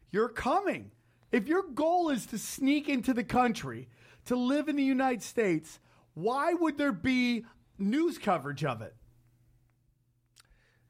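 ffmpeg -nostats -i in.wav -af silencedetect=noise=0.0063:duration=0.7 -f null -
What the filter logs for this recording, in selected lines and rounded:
silence_start: 8.89
silence_end: 10.38 | silence_duration: 1.49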